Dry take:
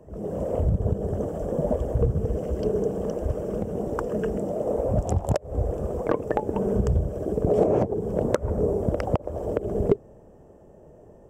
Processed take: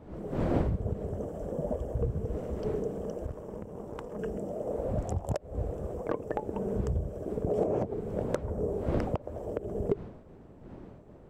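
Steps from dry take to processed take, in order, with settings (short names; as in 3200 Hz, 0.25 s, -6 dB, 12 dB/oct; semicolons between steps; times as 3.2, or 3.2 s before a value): wind noise 340 Hz -33 dBFS; 3.26–4.19 tube stage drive 21 dB, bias 0.8; gain -8 dB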